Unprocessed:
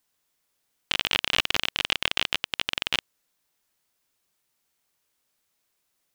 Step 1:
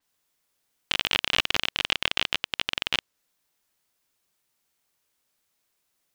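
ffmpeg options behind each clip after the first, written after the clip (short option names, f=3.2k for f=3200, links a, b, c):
-af "adynamicequalizer=threshold=0.00708:dfrequency=6900:dqfactor=0.7:tfrequency=6900:tqfactor=0.7:attack=5:release=100:ratio=0.375:range=2:mode=cutabove:tftype=highshelf"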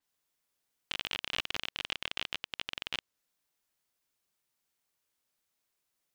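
-af "alimiter=limit=-9.5dB:level=0:latency=1:release=111,volume=-7dB"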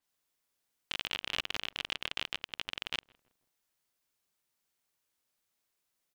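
-filter_complex "[0:a]asplit=2[a][b];[b]adelay=162,lowpass=f=940:p=1,volume=-22dB,asplit=2[c][d];[d]adelay=162,lowpass=f=940:p=1,volume=0.49,asplit=2[e][f];[f]adelay=162,lowpass=f=940:p=1,volume=0.49[g];[a][c][e][g]amix=inputs=4:normalize=0"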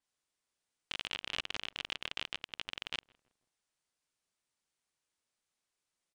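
-af "aresample=22050,aresample=44100,volume=-3dB"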